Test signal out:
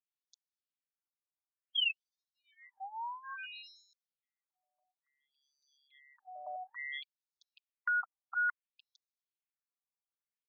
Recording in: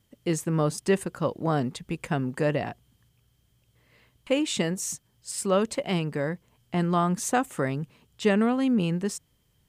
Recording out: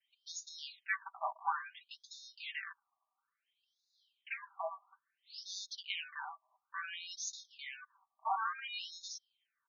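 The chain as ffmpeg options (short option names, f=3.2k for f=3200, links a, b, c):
-filter_complex "[0:a]aecho=1:1:5.1:0.76,adynamicequalizer=threshold=0.0141:dfrequency=590:dqfactor=1.4:tfrequency=590:tqfactor=1.4:attack=5:release=100:ratio=0.375:range=3.5:mode=boostabove:tftype=bell,acrossover=split=410|840|3600[a][b][c][d];[a]acrusher=samples=33:mix=1:aa=0.000001[e];[e][b][c][d]amix=inputs=4:normalize=0,afftfilt=real='re*between(b*sr/1024,860*pow(5000/860,0.5+0.5*sin(2*PI*0.58*pts/sr))/1.41,860*pow(5000/860,0.5+0.5*sin(2*PI*0.58*pts/sr))*1.41)':imag='im*between(b*sr/1024,860*pow(5000/860,0.5+0.5*sin(2*PI*0.58*pts/sr))/1.41,860*pow(5000/860,0.5+0.5*sin(2*PI*0.58*pts/sr))*1.41)':win_size=1024:overlap=0.75,volume=-6.5dB"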